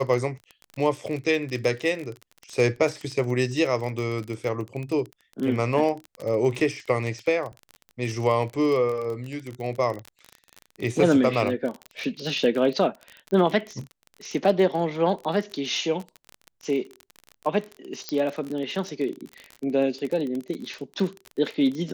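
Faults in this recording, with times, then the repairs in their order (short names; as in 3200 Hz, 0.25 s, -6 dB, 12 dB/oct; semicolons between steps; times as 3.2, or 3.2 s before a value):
crackle 32/s -29 dBFS
18.09 pop -14 dBFS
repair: de-click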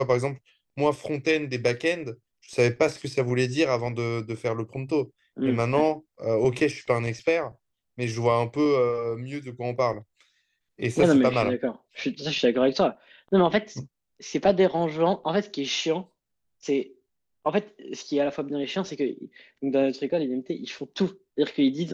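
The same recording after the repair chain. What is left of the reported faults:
none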